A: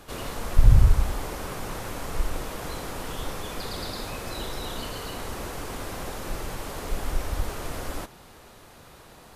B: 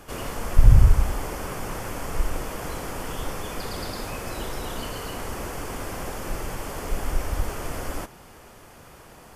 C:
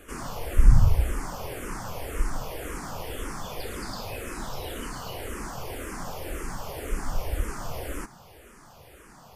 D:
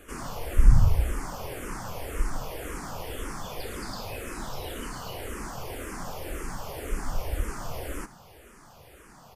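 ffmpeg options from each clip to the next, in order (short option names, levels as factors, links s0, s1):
-af "equalizer=f=3900:t=o:w=0.23:g=-11.5,volume=1.26"
-filter_complex "[0:a]asplit=2[s0][s1];[s1]afreqshift=-1.9[s2];[s0][s2]amix=inputs=2:normalize=1"
-af "aecho=1:1:82:0.0841,volume=0.891"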